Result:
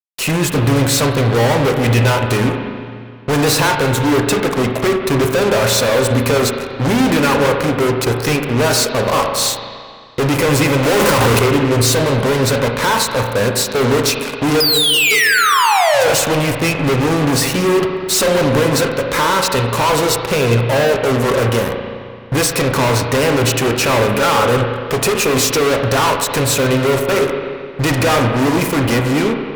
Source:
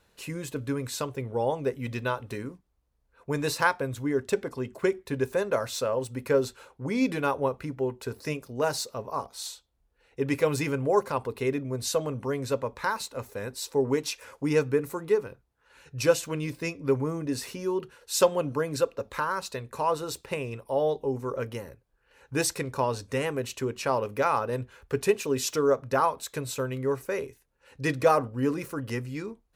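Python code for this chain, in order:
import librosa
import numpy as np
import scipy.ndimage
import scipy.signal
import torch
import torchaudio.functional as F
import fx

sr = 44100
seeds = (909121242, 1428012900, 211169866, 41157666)

y = fx.clip_1bit(x, sr, at=(10.83, 11.39))
y = fx.spec_paint(y, sr, seeds[0], shape='fall', start_s=14.6, length_s=1.52, low_hz=440.0, high_hz=5100.0, level_db=-17.0)
y = fx.fuzz(y, sr, gain_db=44.0, gate_db=-44.0)
y = fx.rev_spring(y, sr, rt60_s=2.1, pass_ms=(34, 43), chirp_ms=50, drr_db=3.5)
y = fx.end_taper(y, sr, db_per_s=150.0)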